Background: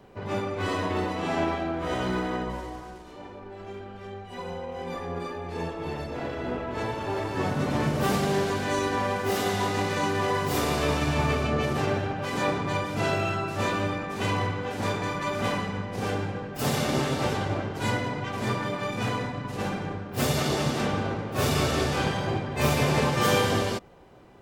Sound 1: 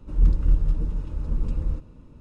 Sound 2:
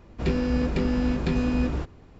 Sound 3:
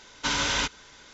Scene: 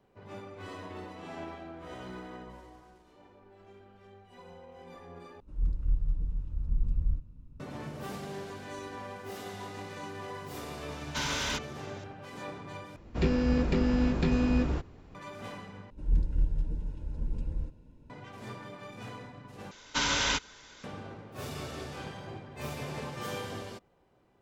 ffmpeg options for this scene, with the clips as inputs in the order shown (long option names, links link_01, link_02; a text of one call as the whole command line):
ffmpeg -i bed.wav -i cue0.wav -i cue1.wav -i cue2.wav -filter_complex "[1:a]asplit=2[link_01][link_02];[3:a]asplit=2[link_03][link_04];[0:a]volume=-15dB[link_05];[link_01]asubboost=boost=9:cutoff=190[link_06];[link_03]asoftclip=type=tanh:threshold=-22dB[link_07];[link_02]asuperstop=centerf=1200:order=8:qfactor=4.7[link_08];[link_05]asplit=5[link_09][link_10][link_11][link_12][link_13];[link_09]atrim=end=5.404[link_14];[link_06]atrim=end=2.2,asetpts=PTS-STARTPTS,volume=-16dB[link_15];[link_10]atrim=start=7.596:end=12.964[link_16];[2:a]atrim=end=2.19,asetpts=PTS-STARTPTS,volume=-2dB[link_17];[link_11]atrim=start=15.146:end=15.904[link_18];[link_08]atrim=end=2.2,asetpts=PTS-STARTPTS,volume=-8dB[link_19];[link_12]atrim=start=18.096:end=19.714[link_20];[link_04]atrim=end=1.13,asetpts=PTS-STARTPTS,volume=-2dB[link_21];[link_13]atrim=start=20.836[link_22];[link_07]atrim=end=1.13,asetpts=PTS-STARTPTS,volume=-4.5dB,afade=type=in:duration=0.004:curve=hsin,afade=type=out:start_time=1.126:duration=0.004:curve=hsin,adelay=10910[link_23];[link_14][link_15]acrossfade=duration=0.004:curve1=hsin:curve2=hsin[link_24];[link_24][link_16]acrossfade=duration=0.004:curve1=hsin:curve2=hsin[link_25];[link_25][link_17]acrossfade=duration=0.004:curve1=hsin:curve2=hsin[link_26];[link_26][link_18]acrossfade=duration=0.004:curve1=hsin:curve2=hsin[link_27];[link_27][link_19]acrossfade=duration=0.004:curve1=hsin:curve2=hsin[link_28];[link_28][link_20]acrossfade=duration=0.004:curve1=hsin:curve2=hsin[link_29];[link_29][link_21]acrossfade=duration=0.004:curve1=hsin:curve2=hsin[link_30];[link_30][link_22]acrossfade=duration=0.004:curve1=hsin:curve2=hsin[link_31];[link_31][link_23]amix=inputs=2:normalize=0" out.wav